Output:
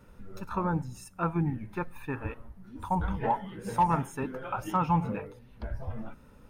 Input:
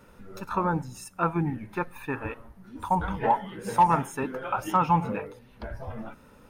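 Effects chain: low shelf 170 Hz +10 dB; gain -5.5 dB

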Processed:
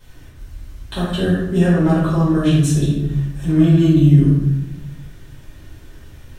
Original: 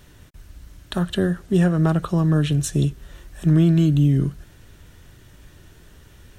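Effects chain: shoebox room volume 310 m³, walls mixed, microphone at 5 m; gain -8.5 dB

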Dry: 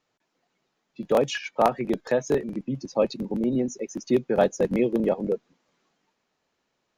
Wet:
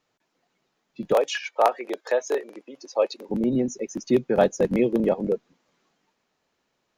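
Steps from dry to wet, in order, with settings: 1.13–3.29 HPF 420 Hz 24 dB/oct; gain +1.5 dB

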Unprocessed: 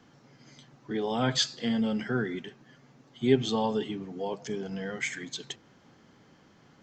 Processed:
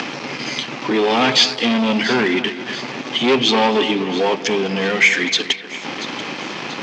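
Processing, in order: upward compressor, threshold -30 dBFS; sample leveller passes 5; speaker cabinet 300–5700 Hz, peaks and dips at 460 Hz -3 dB, 670 Hz -3 dB, 1500 Hz -4 dB, 2500 Hz +8 dB; split-band echo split 2900 Hz, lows 0.24 s, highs 0.685 s, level -13 dB; gain +2 dB

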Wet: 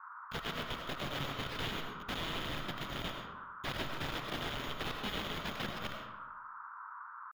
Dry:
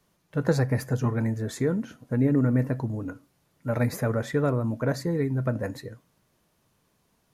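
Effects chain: FFT order left unsorted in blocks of 128 samples; tilt shelf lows -9 dB, about 870 Hz; in parallel at +3 dB: limiter -9 dBFS, peak gain reduction 7 dB; on the sum: compressor 20:1, threshold -22 dBFS, peak gain reduction 19 dB; pitch shift +3.5 st; crossover distortion -34 dBFS; band noise 950–1500 Hz -54 dBFS; wrapped overs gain 26.5 dB; air absorption 350 m; digital reverb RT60 0.99 s, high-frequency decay 0.55×, pre-delay 55 ms, DRR 3.5 dB; gain +6 dB

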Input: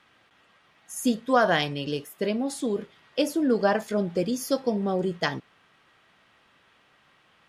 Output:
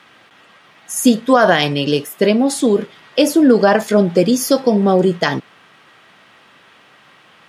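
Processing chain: HPF 120 Hz 12 dB/oct; maximiser +14.5 dB; gain -1 dB

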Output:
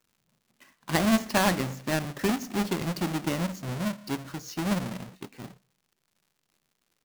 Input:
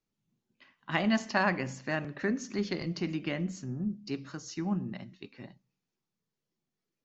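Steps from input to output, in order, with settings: half-waves squared off; crackle 160/s -54 dBFS

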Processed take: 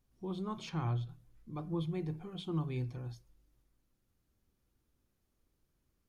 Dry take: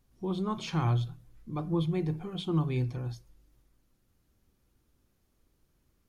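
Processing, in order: 0.69–1.09 high shelf 4500 Hz -9 dB; gain -7 dB

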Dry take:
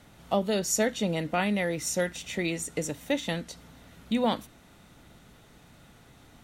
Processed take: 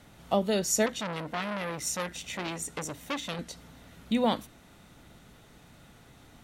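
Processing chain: 0.86–3.39 core saturation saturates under 2400 Hz

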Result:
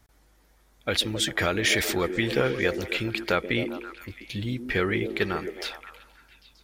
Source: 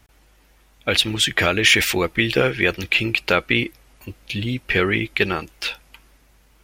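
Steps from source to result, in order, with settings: bell 2700 Hz -8.5 dB 0.42 oct; on a send: delay with a stepping band-pass 0.133 s, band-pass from 310 Hz, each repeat 0.7 oct, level -4.5 dB; on the sum: gain -5.5 dB

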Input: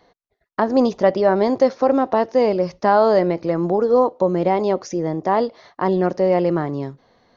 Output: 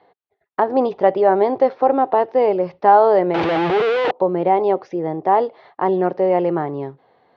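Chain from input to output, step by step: 3.34–4.11 infinite clipping; speaker cabinet 120–3400 Hz, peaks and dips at 220 Hz -8 dB, 410 Hz +5 dB, 810 Hz +8 dB; gain -1.5 dB

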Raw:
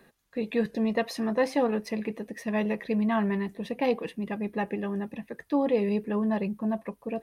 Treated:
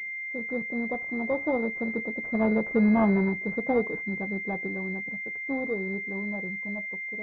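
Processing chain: CVSD 16 kbps; Doppler pass-by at 2.88, 21 m/s, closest 16 m; pulse-width modulation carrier 2100 Hz; gain +5.5 dB

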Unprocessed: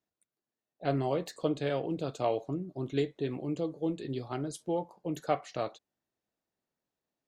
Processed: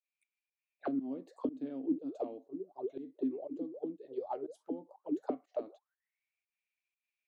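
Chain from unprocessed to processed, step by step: auto-wah 260–2400 Hz, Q 18, down, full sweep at -28.5 dBFS; RIAA curve recording; pump 121 bpm, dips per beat 1, -18 dB, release 0.165 s; gain +14.5 dB

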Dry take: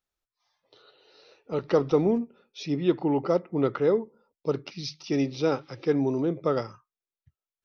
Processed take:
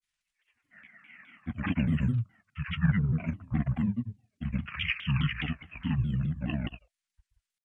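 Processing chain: EQ curve 280 Hz 0 dB, 940 Hz -16 dB, 3600 Hz +9 dB; pitch shift -12 st; grains, grains 20/s, spray 0.1 s, pitch spread up and down by 0 st; shaped vibrato saw down 4.8 Hz, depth 250 cents

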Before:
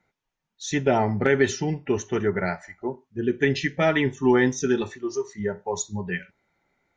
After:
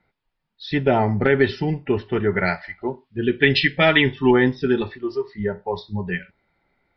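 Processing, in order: low shelf 65 Hz +9 dB; downsampling 11025 Hz; 2.3–4.31 bell 3400 Hz +10.5 dB 1.8 oct; gain +2.5 dB

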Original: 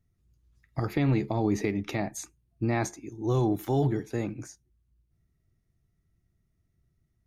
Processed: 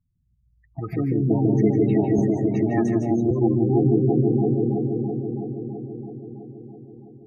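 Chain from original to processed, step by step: high shelf 5000 Hz +3.5 dB; repeats that get brighter 0.329 s, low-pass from 750 Hz, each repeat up 2 oct, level 0 dB; spectral gate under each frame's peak -15 dB strong; reverb RT60 0.15 s, pre-delay 0.147 s, DRR 4 dB; 2.18–3.31 three-band squash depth 100%; gain -7 dB

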